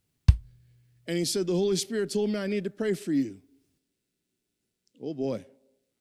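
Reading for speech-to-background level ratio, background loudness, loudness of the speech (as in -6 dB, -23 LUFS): -3.0 dB, -26.5 LUFS, -29.5 LUFS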